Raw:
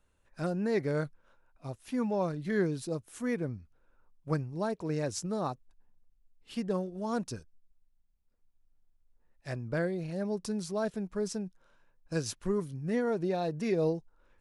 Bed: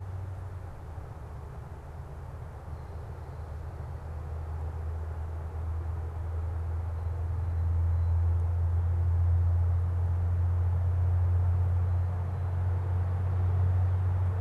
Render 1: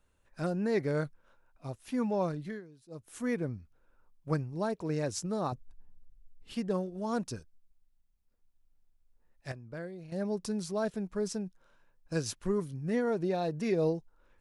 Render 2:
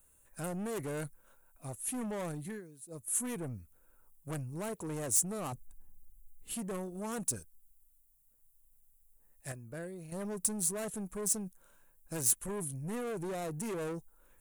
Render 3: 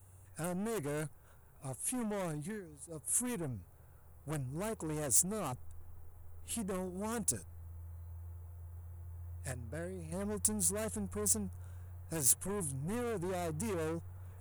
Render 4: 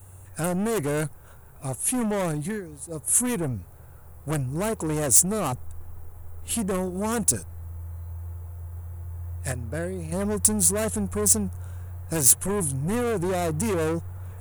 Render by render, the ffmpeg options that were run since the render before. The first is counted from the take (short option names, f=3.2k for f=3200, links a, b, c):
-filter_complex "[0:a]asettb=1/sr,asplit=3[a][b][c];[a]atrim=end=5.524[d];[b]atrim=start=5.52:end=6.53,asetpts=PTS-STARTPTS,afade=t=in:d=0.004:c=qsin,afade=t=out:st=1.006:d=0.004:c=qsin,lowshelf=f=240:g=11[e];[c]atrim=start=6.526[f];[d][e]acrossfade=d=0.004:c1=hsin:c2=qsin[g];[g][f]acrossfade=d=0.004:c1=qsin:c2=hsin,asplit=5[h][i][j][k][l];[h]atrim=end=2.61,asetpts=PTS-STARTPTS,afade=t=out:st=2.36:d=0.25:silence=0.0794328[m];[i]atrim=start=2.61:end=2.88,asetpts=PTS-STARTPTS,volume=-22dB[n];[j]atrim=start=2.88:end=9.522,asetpts=PTS-STARTPTS,afade=t=in:d=0.25:silence=0.0794328[o];[k]atrim=start=9.518:end=10.122,asetpts=PTS-STARTPTS,volume=-10dB[p];[l]atrim=start=10.118[q];[m][n][o]concat=n=3:v=0:a=1[r];[r][p]acrossfade=d=0.004:c1=hsin:c2=hsin[s];[s][q]acrossfade=d=0.004:c1=hsin:c2=hsin"
-af "asoftclip=type=tanh:threshold=-35dB,aexciter=amount=12.2:drive=4.5:freq=7.3k"
-filter_complex "[1:a]volume=-21.5dB[a];[0:a][a]amix=inputs=2:normalize=0"
-af "volume=12dB,alimiter=limit=-2dB:level=0:latency=1"